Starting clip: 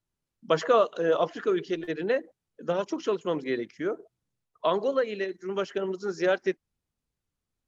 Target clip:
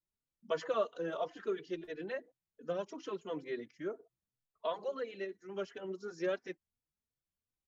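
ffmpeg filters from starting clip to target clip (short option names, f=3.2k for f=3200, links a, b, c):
-filter_complex "[0:a]asplit=2[a][b];[b]adelay=3.4,afreqshift=2.9[c];[a][c]amix=inputs=2:normalize=1,volume=-8.5dB"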